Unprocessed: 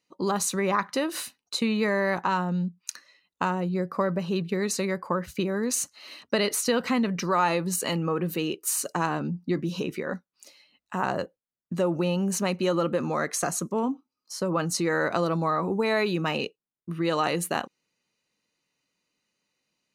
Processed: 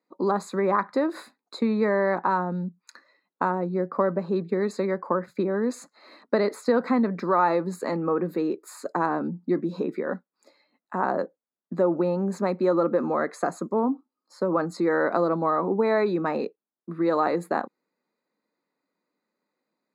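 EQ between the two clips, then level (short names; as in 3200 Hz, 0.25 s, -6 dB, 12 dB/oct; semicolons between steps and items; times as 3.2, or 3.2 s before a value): running mean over 15 samples; HPF 210 Hz 24 dB/oct; +4.0 dB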